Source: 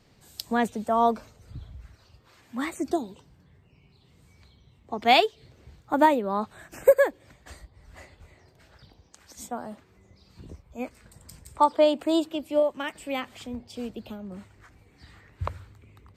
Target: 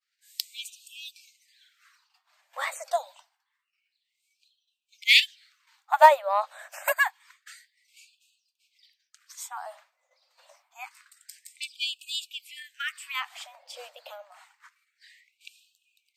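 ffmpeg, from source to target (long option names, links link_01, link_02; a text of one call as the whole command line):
ffmpeg -i in.wav -af "aeval=exprs='0.562*(cos(1*acos(clip(val(0)/0.562,-1,1)))-cos(1*PI/2))+0.0224*(cos(7*acos(clip(val(0)/0.562,-1,1)))-cos(7*PI/2))':channel_layout=same,agate=range=-33dB:threshold=-51dB:ratio=3:detection=peak,afftfilt=real='re*gte(b*sr/1024,480*pow(2500/480,0.5+0.5*sin(2*PI*0.27*pts/sr)))':imag='im*gte(b*sr/1024,480*pow(2500/480,0.5+0.5*sin(2*PI*0.27*pts/sr)))':win_size=1024:overlap=0.75,volume=6dB" out.wav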